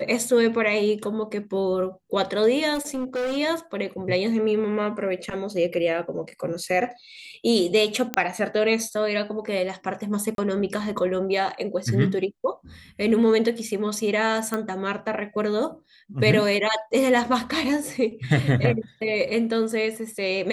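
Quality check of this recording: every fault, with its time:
0:02.74–0:03.38: clipping −23.5 dBFS
0:08.14: click −8 dBFS
0:10.35–0:10.38: drop-out 32 ms
0:14.54: click −13 dBFS

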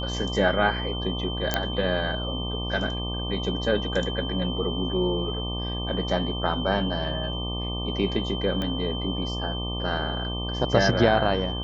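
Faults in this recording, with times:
mains buzz 60 Hz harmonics 20 −31 dBFS
whistle 3,100 Hz −33 dBFS
0:01.54: click −7 dBFS
0:08.62: click −17 dBFS

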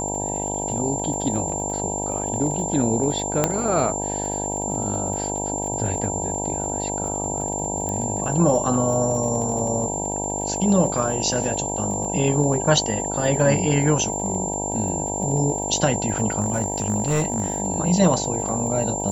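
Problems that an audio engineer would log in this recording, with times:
mains buzz 50 Hz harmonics 19 −29 dBFS
surface crackle 40 per second −31 dBFS
whistle 7,300 Hz −27 dBFS
0:03.44: click −4 dBFS
0:07.89: click −15 dBFS
0:16.40–0:17.60: clipping −15.5 dBFS

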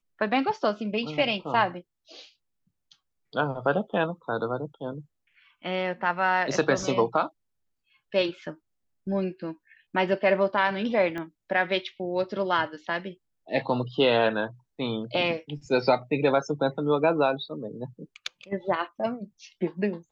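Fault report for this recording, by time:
0:11.18: click −22 dBFS

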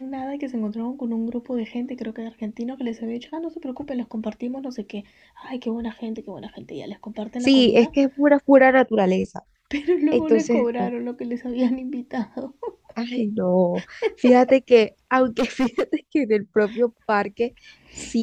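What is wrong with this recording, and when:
0:15.39–0:15.83: clipping −16.5 dBFS

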